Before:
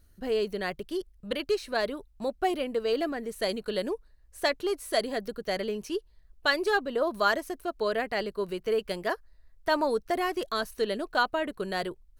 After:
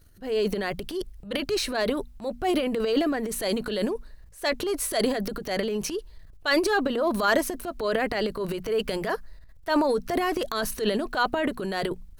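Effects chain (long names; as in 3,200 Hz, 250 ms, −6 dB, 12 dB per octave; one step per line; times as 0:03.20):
transient designer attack −6 dB, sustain +11 dB
mains-hum notches 60/120/180/240 Hz
level +3 dB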